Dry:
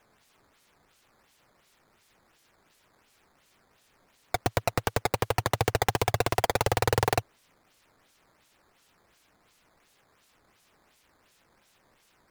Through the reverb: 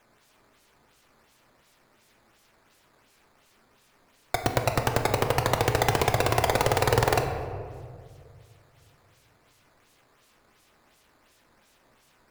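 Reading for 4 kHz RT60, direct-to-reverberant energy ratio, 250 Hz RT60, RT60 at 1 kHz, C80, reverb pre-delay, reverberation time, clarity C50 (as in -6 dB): 1.0 s, 4.0 dB, 2.4 s, 1.7 s, 7.5 dB, 3 ms, 2.1 s, 6.5 dB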